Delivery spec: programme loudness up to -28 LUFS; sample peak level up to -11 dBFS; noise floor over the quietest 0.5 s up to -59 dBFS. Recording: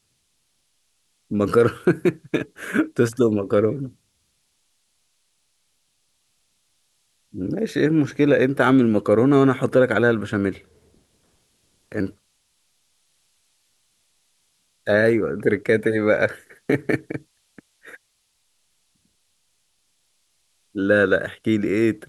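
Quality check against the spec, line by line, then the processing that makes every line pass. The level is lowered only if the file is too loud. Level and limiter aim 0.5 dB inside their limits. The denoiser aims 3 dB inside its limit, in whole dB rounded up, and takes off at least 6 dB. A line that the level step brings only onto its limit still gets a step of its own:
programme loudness -20.5 LUFS: fail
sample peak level -5.5 dBFS: fail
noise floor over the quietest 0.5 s -69 dBFS: pass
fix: trim -8 dB

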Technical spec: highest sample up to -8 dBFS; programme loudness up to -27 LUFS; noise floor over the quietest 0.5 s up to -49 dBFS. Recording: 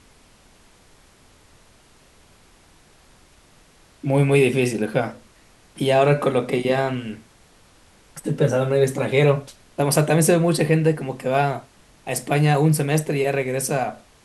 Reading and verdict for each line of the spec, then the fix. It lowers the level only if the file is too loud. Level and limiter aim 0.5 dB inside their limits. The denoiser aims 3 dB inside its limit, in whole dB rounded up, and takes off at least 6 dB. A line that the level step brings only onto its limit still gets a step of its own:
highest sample -3.5 dBFS: fail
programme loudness -20.5 LUFS: fail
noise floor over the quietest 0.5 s -53 dBFS: pass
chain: trim -7 dB

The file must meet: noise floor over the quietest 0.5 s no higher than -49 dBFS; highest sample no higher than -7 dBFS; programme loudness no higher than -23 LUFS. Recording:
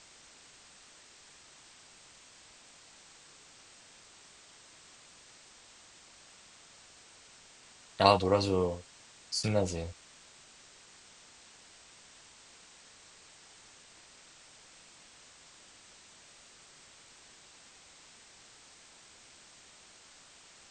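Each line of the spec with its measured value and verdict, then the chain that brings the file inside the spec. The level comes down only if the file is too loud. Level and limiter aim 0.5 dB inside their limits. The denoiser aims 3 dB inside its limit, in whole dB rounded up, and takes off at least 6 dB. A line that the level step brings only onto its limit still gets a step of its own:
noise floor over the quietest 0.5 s -57 dBFS: pass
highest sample -5.0 dBFS: fail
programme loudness -29.5 LUFS: pass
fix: peak limiter -7.5 dBFS

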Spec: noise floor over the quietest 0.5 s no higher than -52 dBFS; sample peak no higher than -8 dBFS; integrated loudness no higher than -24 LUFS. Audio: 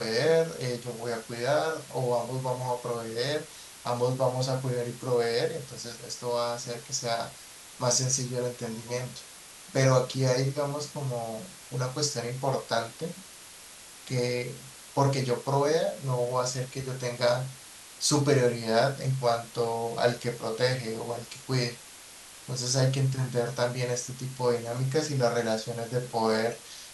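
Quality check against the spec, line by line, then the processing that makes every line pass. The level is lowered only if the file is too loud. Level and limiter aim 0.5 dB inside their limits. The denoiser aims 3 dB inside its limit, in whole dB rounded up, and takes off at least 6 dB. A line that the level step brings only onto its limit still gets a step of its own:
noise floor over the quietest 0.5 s -48 dBFS: fail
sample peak -9.5 dBFS: pass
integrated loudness -29.0 LUFS: pass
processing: noise reduction 7 dB, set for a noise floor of -48 dBFS

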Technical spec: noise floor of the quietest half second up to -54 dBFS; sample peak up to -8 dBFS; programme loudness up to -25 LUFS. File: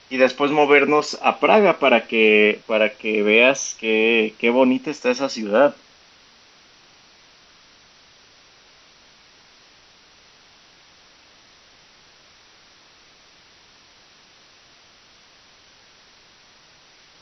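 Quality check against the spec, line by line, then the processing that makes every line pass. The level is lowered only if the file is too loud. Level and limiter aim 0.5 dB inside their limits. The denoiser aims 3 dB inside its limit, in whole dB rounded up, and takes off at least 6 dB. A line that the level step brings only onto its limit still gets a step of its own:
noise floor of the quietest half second -52 dBFS: fail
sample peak -1.5 dBFS: fail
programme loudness -17.5 LUFS: fail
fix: trim -8 dB

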